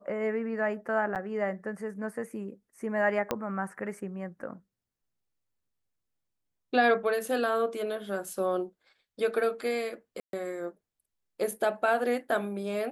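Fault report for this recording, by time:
1.15–1.16 gap 8.2 ms
3.31 pop -13 dBFS
10.2–10.33 gap 0.132 s

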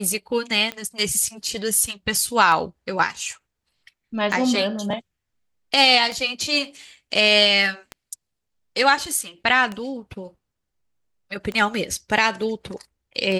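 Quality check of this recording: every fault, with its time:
tick 33 1/3 rpm -15 dBFS

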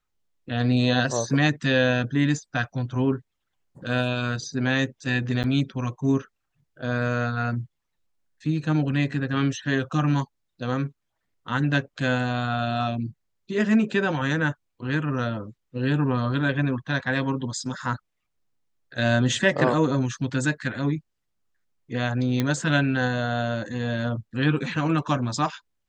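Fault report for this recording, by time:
5.43–5.44 gap 8.5 ms
22.4 pop -11 dBFS

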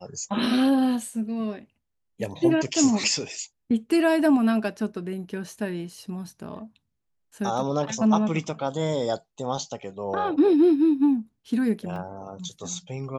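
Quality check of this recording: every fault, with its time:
11.96 gap 2.1 ms

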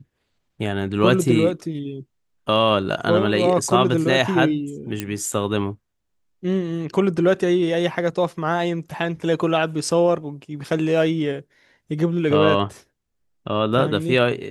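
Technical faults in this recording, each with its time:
5 pop -10 dBFS

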